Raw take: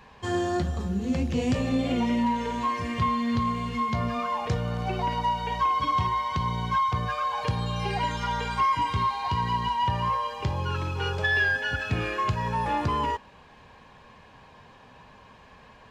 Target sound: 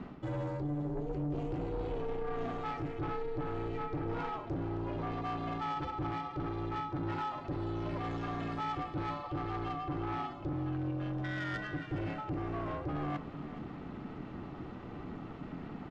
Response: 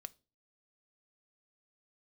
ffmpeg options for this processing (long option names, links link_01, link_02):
-filter_complex "[0:a]aemphasis=mode=reproduction:type=riaa,bandreject=frequency=60:width_type=h:width=6,bandreject=frequency=120:width_type=h:width=6,bandreject=frequency=180:width_type=h:width=6,bandreject=frequency=240:width_type=h:width=6,areverse,acompressor=threshold=-31dB:ratio=6,areverse,aeval=exprs='val(0)*sin(2*PI*220*n/s)':channel_layout=same,asoftclip=type=tanh:threshold=-34.5dB,asplit=2[link_01][link_02];[link_02]aecho=0:1:420:0.2[link_03];[link_01][link_03]amix=inputs=2:normalize=0,volume=3.5dB"